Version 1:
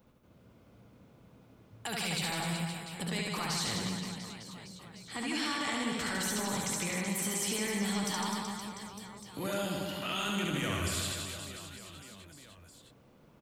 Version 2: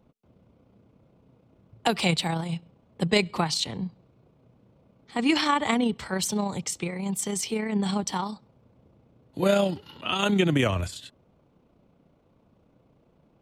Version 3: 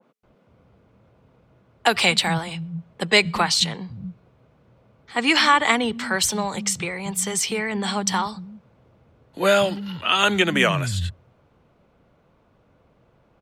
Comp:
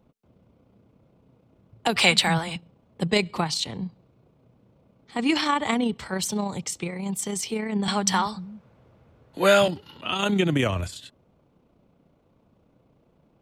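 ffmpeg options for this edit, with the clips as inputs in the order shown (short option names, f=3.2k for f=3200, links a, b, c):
-filter_complex "[2:a]asplit=2[a][b];[1:a]asplit=3[c][d][e];[c]atrim=end=1.962[f];[a]atrim=start=1.958:end=2.562[g];[d]atrim=start=2.558:end=7.882[h];[b]atrim=start=7.878:end=9.682[i];[e]atrim=start=9.678[j];[f][g]acrossfade=d=0.004:c1=hsin:c2=hsin[k];[k][h]acrossfade=d=0.004:c1=hsin:c2=hsin[l];[l][i]acrossfade=d=0.004:c1=hsin:c2=hsin[m];[m][j]acrossfade=d=0.004:c1=hsin:c2=hsin"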